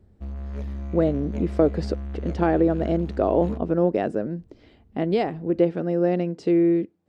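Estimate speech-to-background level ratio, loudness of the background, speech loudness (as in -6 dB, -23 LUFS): 10.5 dB, -34.0 LUFS, -23.5 LUFS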